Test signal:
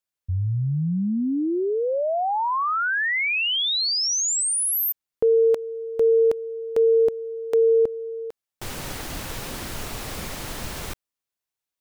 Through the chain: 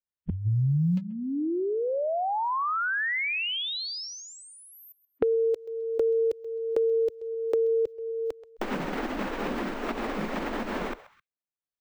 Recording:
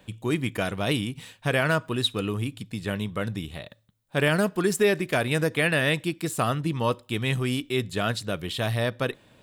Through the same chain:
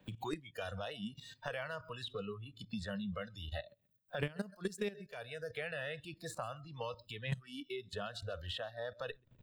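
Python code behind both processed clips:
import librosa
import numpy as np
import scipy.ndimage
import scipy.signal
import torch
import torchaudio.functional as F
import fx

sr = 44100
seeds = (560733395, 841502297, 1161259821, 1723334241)

y = fx.low_shelf(x, sr, hz=250.0, db=10.0)
y = fx.level_steps(y, sr, step_db=17)
y = fx.peak_eq(y, sr, hz=12000.0, db=-14.0, octaves=1.2)
y = fx.echo_feedback(y, sr, ms=131, feedback_pct=27, wet_db=-20.0)
y = fx.noise_reduce_blind(y, sr, reduce_db=23)
y = fx.band_squash(y, sr, depth_pct=100)
y = F.gain(torch.from_numpy(y), -3.5).numpy()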